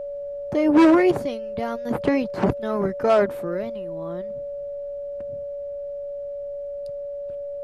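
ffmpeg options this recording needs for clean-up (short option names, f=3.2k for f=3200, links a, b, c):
-af "bandreject=f=570:w=30,agate=range=-21dB:threshold=-24dB"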